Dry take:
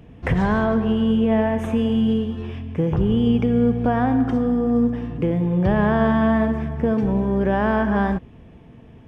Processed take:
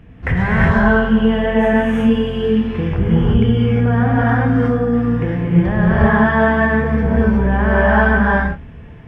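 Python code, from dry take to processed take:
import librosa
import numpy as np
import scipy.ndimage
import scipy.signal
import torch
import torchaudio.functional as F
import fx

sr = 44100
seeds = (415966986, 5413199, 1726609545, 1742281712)

p1 = fx.low_shelf(x, sr, hz=200.0, db=11.0)
p2 = fx.doubler(p1, sr, ms=27.0, db=-11.0)
p3 = fx.rev_gated(p2, sr, seeds[0], gate_ms=390, shape='rising', drr_db=-7.5)
p4 = fx.rider(p3, sr, range_db=4, speed_s=0.5)
p5 = p3 + (p4 * 10.0 ** (2.0 / 20.0))
p6 = fx.peak_eq(p5, sr, hz=1700.0, db=11.5, octaves=1.5)
y = p6 * 10.0 ** (-15.0 / 20.0)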